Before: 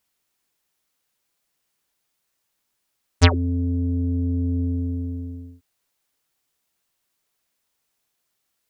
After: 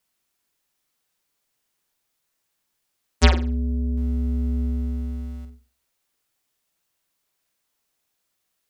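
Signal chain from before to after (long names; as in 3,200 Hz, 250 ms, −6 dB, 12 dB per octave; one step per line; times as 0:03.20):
0:03.97–0:05.45: converter with a step at zero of −40 dBFS
frequency shifter −20 Hz
flutter between parallel walls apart 8.1 metres, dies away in 0.34 s
level −1 dB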